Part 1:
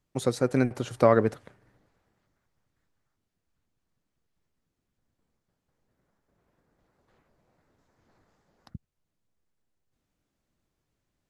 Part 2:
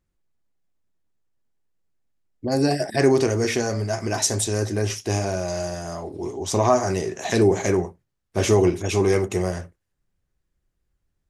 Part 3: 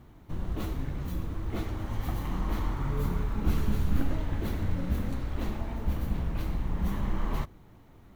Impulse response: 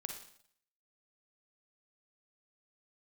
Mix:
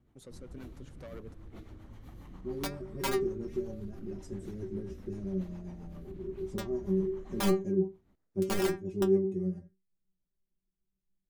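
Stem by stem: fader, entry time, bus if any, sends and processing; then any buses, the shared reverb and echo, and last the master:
-19.5 dB, 0.00 s, no send, saturation -21 dBFS, distortion -7 dB
+3.0 dB, 0.00 s, no send, FFT filter 310 Hz 0 dB, 750 Hz -18 dB, 4.2 kHz -28 dB; integer overflow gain 13.5 dB; inharmonic resonator 190 Hz, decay 0.25 s, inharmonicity 0.002
-15.0 dB, 0.00 s, no send, Bessel low-pass 10 kHz, order 2; peak limiter -23.5 dBFS, peak gain reduction 10.5 dB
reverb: none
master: peaking EQ 270 Hz +2.5 dB 1.8 oct; rotary cabinet horn 7.5 Hz; treble shelf 9.9 kHz +6.5 dB

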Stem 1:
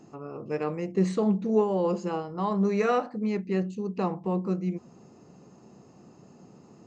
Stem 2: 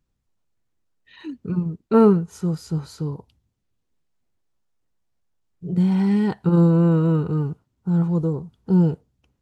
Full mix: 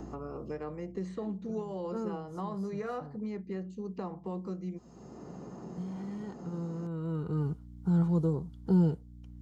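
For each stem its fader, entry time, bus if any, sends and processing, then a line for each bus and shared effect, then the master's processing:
-11.5 dB, 0.00 s, no send, band-stop 2.2 kHz, Q 21; three bands compressed up and down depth 70%
-3.0 dB, 0.00 s, no send, hum 60 Hz, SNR 23 dB; auto duck -20 dB, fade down 1.60 s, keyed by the first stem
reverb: none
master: band-stop 2.6 kHz, Q 7.7; three bands compressed up and down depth 40%

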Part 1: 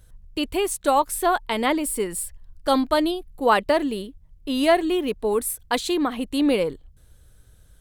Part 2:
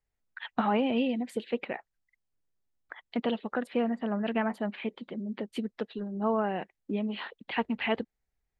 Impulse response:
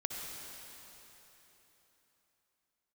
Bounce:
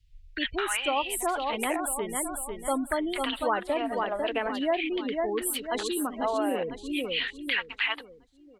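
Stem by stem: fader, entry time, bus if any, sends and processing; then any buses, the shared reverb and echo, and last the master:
-4.0 dB, 0.00 s, no send, echo send -7 dB, spectral gate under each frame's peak -20 dB strong; three bands expanded up and down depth 70%
0.0 dB, 0.00 s, no send, no echo send, LFO high-pass saw down 0.44 Hz 400–3000 Hz; peaking EQ 3.9 kHz +13 dB 2.2 oct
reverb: none
echo: feedback delay 498 ms, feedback 39%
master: compression 2.5:1, threshold -27 dBFS, peak gain reduction 10 dB

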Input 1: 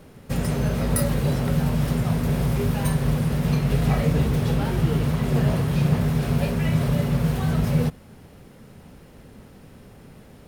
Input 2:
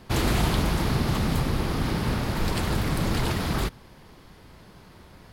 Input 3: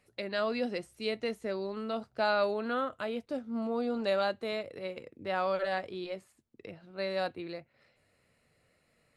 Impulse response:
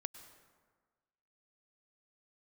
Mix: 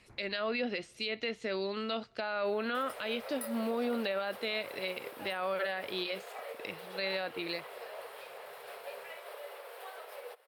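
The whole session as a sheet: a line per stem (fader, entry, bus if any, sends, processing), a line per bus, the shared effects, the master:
-5.5 dB, 2.45 s, no send, compression 2.5:1, threshold -29 dBFS, peak gain reduction 10 dB; steep high-pass 460 Hz 48 dB/octave; peaking EQ 6.4 kHz -12.5 dB 0.65 oct
-15.5 dB, 0.00 s, no send, elliptic low-pass 2.3 kHz; compression 2:1, threshold -41 dBFS, peak gain reduction 12 dB; auto duck -23 dB, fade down 0.40 s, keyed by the third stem
+1.0 dB, 0.00 s, send -22.5 dB, low-pass that closes with the level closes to 2 kHz, closed at -27 dBFS; frequency weighting D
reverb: on, RT60 1.5 s, pre-delay 92 ms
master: peak limiter -24.5 dBFS, peak gain reduction 11 dB

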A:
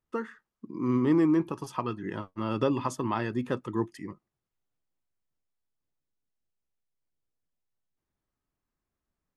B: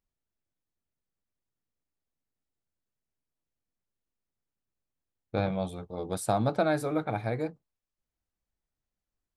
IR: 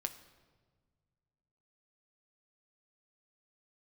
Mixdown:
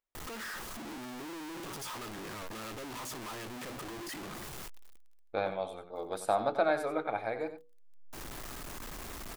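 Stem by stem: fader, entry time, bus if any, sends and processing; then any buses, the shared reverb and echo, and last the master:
-7.5 dB, 0.15 s, no send, no echo send, one-bit comparator; auto duck -20 dB, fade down 0.70 s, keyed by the second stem
0.0 dB, 0.00 s, no send, echo send -11.5 dB, tone controls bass -13 dB, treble -8 dB; hum notches 60/120/180/240/300/360/420/480 Hz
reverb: none
echo: delay 92 ms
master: peaking EQ 120 Hz -6 dB 2.3 oct

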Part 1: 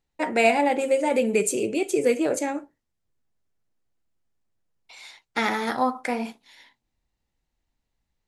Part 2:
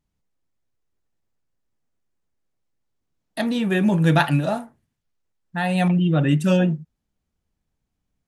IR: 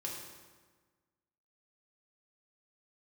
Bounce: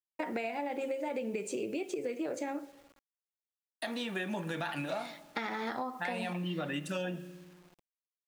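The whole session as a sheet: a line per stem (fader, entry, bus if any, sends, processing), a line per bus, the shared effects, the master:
-2.5 dB, 0.00 s, send -19 dB, low-pass 4.9 kHz 12 dB/octave; compression 3:1, threshold -28 dBFS, peak gain reduction 11 dB
-6.5 dB, 0.45 s, send -12 dB, frequency weighting A; peak limiter -16.5 dBFS, peak gain reduction 11 dB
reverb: on, RT60 1.4 s, pre-delay 3 ms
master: high-pass 110 Hz 12 dB/octave; bit crusher 10-bit; compression, threshold -32 dBFS, peak gain reduction 7 dB

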